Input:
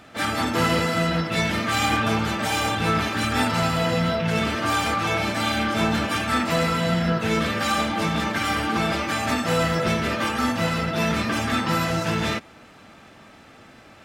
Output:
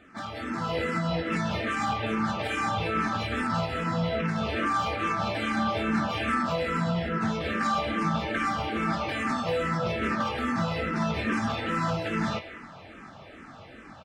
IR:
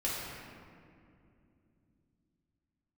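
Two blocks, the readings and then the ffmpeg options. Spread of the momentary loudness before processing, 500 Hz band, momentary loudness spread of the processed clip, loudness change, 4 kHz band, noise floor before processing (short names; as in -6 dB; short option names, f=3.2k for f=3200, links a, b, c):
2 LU, -5.0 dB, 10 LU, -5.5 dB, -9.5 dB, -48 dBFS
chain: -filter_complex "[0:a]alimiter=limit=-20.5dB:level=0:latency=1:release=185,equalizer=f=13k:w=1.3:g=-13,asplit=2[a][b];[b]adelay=22,volume=-11.5dB[c];[a][c]amix=inputs=2:normalize=0,asplit=2[d][e];[e]highpass=850[f];[1:a]atrim=start_sample=2205[g];[f][g]afir=irnorm=-1:irlink=0,volume=-12dB[h];[d][h]amix=inputs=2:normalize=0,dynaudnorm=f=400:g=3:m=8dB,highshelf=f=2.8k:g=-10,asplit=2[i][j];[j]afreqshift=-2.4[k];[i][k]amix=inputs=2:normalize=1,volume=-3dB"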